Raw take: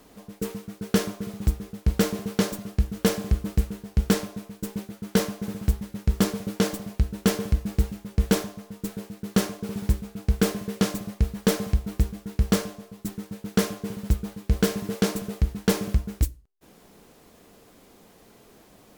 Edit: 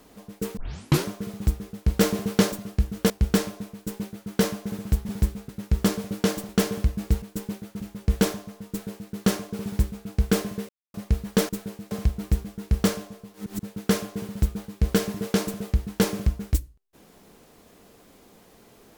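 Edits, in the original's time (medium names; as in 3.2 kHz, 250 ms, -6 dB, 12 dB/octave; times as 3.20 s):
0.57 s: tape start 0.50 s
2.01–2.52 s: gain +3.5 dB
3.10–3.86 s: delete
4.49–5.07 s: copy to 7.90 s
6.85–7.17 s: delete
8.80–9.22 s: copy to 11.59 s
9.76–10.16 s: copy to 5.85 s
10.79–11.04 s: mute
13.02–13.30 s: reverse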